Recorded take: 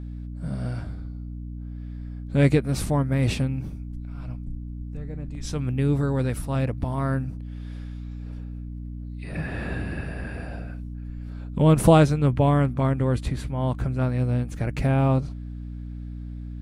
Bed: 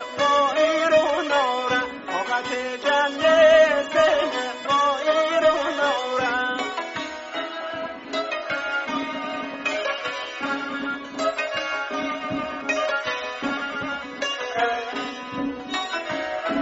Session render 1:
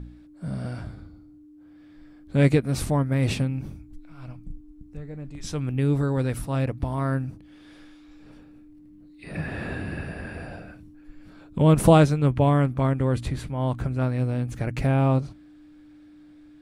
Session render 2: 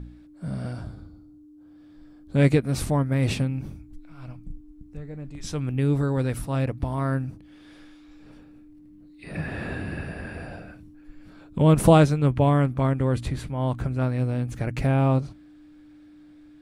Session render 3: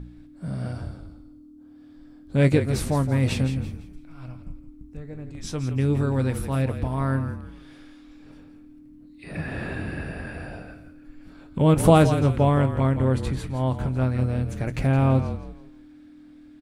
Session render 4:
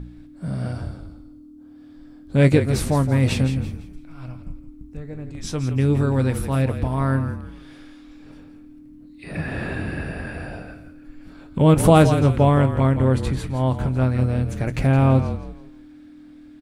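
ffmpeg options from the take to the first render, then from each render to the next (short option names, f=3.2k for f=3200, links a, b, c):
-af "bandreject=f=60:t=h:w=4,bandreject=f=120:t=h:w=4,bandreject=f=180:t=h:w=4,bandreject=f=240:t=h:w=4"
-filter_complex "[0:a]asettb=1/sr,asplit=3[a][b][c];[a]atrim=end=0.724[d];[b]atrim=start=0.72:end=2.36,asetpts=PTS-STARTPTS,afade=t=in:d=0.004:c=qsin,afade=t=out:st=1.636:d=0.004:c=qsin,equalizer=f=2.1k:w=1.8:g=-8[e];[c]atrim=start=2.356[f];[d][e]acrossfade=d=0.004:c1=hsin:c2=qsin[g];[g][f]acrossfade=d=0.004:c1=qsin:c2=hsin"
-filter_complex "[0:a]asplit=2[a][b];[b]adelay=23,volume=-14dB[c];[a][c]amix=inputs=2:normalize=0,asplit=2[d][e];[e]asplit=4[f][g][h][i];[f]adelay=167,afreqshift=-39,volume=-10dB[j];[g]adelay=334,afreqshift=-78,volume=-19.9dB[k];[h]adelay=501,afreqshift=-117,volume=-29.8dB[l];[i]adelay=668,afreqshift=-156,volume=-39.7dB[m];[j][k][l][m]amix=inputs=4:normalize=0[n];[d][n]amix=inputs=2:normalize=0"
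-af "volume=3.5dB,alimiter=limit=-3dB:level=0:latency=1"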